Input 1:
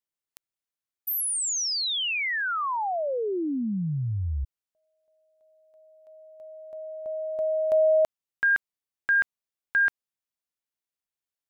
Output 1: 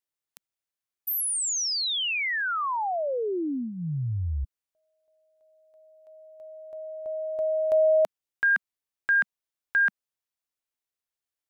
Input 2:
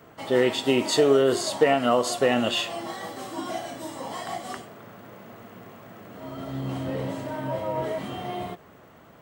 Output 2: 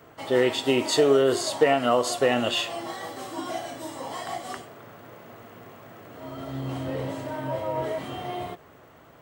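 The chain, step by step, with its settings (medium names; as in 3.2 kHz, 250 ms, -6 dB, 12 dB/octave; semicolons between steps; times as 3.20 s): peaking EQ 200 Hz -9.5 dB 0.32 oct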